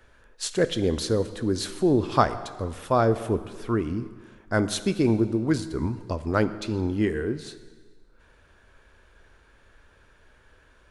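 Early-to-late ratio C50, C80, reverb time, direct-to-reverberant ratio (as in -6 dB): 13.5 dB, 14.0 dB, 1.6 s, 11.5 dB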